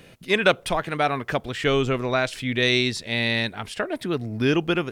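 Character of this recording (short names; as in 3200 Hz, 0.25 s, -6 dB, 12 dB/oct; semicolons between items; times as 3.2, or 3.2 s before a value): noise floor -49 dBFS; spectral tilt -3.0 dB/oct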